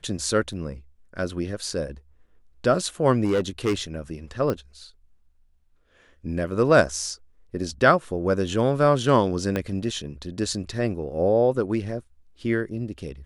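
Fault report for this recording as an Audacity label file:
0.530000	0.530000	drop-out 3.9 ms
3.240000	3.740000	clipping −18 dBFS
4.500000	4.500000	click −14 dBFS
9.560000	9.560000	click −13 dBFS

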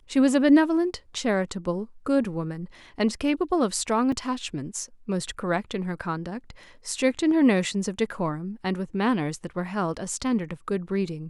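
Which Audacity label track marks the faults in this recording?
4.120000	4.120000	drop-out 3.4 ms

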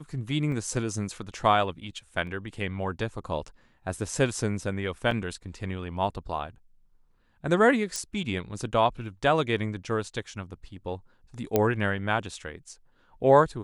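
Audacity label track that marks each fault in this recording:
0.520000	0.520000	drop-out 2.2 ms
2.270000	2.270000	drop-out 2 ms
5.110000	5.110000	drop-out 2.9 ms
7.960000	7.960000	click −17 dBFS
11.560000	11.560000	click −9 dBFS

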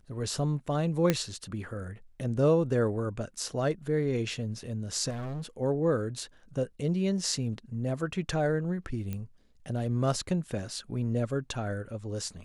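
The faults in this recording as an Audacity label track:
1.100000	1.100000	click −10 dBFS
5.090000	5.460000	clipping −33 dBFS
9.130000	9.130000	click −22 dBFS

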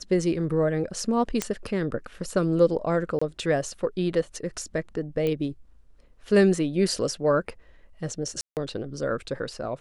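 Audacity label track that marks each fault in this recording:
1.420000	1.420000	click −10 dBFS
3.190000	3.210000	drop-out 25 ms
5.270000	5.270000	click −16 dBFS
8.410000	8.570000	drop-out 158 ms

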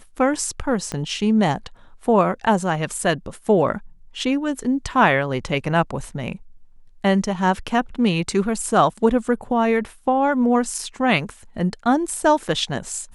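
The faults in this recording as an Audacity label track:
0.920000	0.920000	click −13 dBFS

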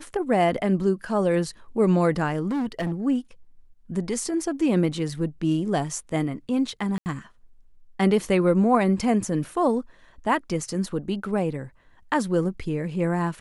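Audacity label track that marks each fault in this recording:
2.480000	2.930000	clipping −23 dBFS
6.980000	7.060000	drop-out 79 ms

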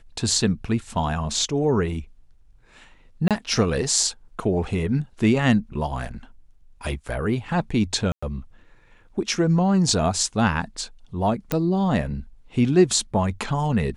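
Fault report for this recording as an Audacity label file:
3.280000	3.310000	drop-out 27 ms
8.120000	8.220000	drop-out 105 ms
11.520000	11.520000	click −9 dBFS

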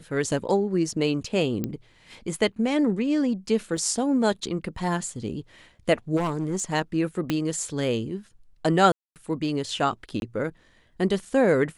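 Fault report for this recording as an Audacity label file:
1.640000	1.640000	click −15 dBFS
3.770000	3.770000	drop-out 2.7 ms
6.160000	6.640000	clipping −22 dBFS
7.300000	7.300000	click −11 dBFS
8.920000	9.160000	drop-out 238 ms
10.200000	10.220000	drop-out 21 ms

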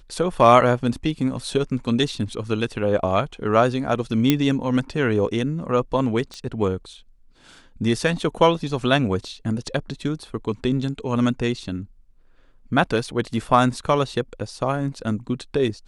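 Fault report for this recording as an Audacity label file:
4.300000	4.300000	click −3 dBFS
6.340000	6.340000	click −22 dBFS
13.040000	13.040000	drop-out 2.8 ms

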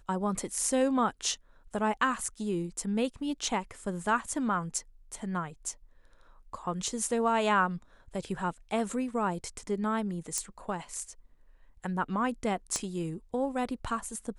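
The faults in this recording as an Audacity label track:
10.380000	10.380000	click −16 dBFS
12.760000	12.760000	click −17 dBFS

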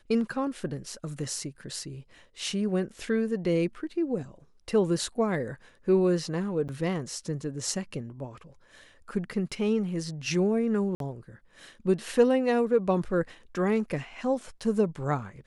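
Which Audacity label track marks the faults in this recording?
6.680000	6.690000	drop-out 8.3 ms
10.950000	11.000000	drop-out 52 ms

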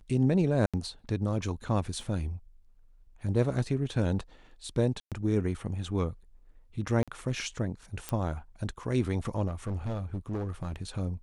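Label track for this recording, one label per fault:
0.660000	0.740000	drop-out 76 ms
2.010000	2.010000	drop-out 2.5 ms
5.000000	5.120000	drop-out 117 ms
7.030000	7.080000	drop-out 46 ms
8.090000	8.090000	click −17 dBFS
9.470000	10.760000	clipping −29 dBFS

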